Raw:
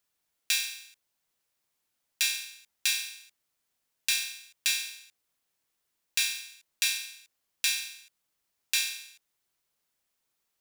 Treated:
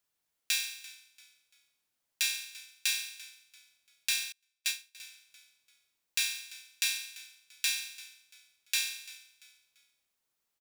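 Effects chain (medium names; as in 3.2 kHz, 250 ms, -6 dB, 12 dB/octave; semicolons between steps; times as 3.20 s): on a send: frequency-shifting echo 341 ms, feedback 34%, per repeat -53 Hz, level -19 dB; 4.32–4.95 s: on the sum: upward expansion 2.5:1, over -44 dBFS; trim -3 dB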